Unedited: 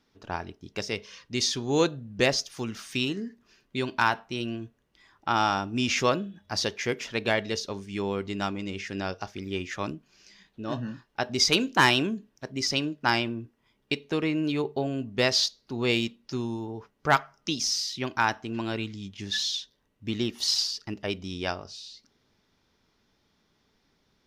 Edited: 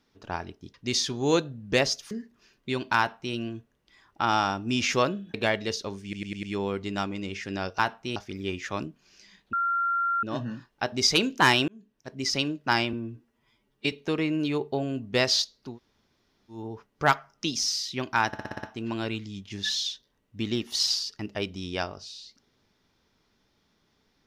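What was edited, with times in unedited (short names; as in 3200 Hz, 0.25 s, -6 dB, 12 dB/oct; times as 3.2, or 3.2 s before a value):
0.74–1.21 cut
2.58–3.18 cut
4.05–4.42 copy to 9.23
6.41–7.18 cut
7.87 stutter 0.10 s, 5 plays
10.6 add tone 1380 Hz -23 dBFS 0.70 s
12.05–12.64 fade in
13.3–13.96 stretch 1.5×
15.75–16.6 room tone, crossfade 0.16 s
18.31 stutter 0.06 s, 7 plays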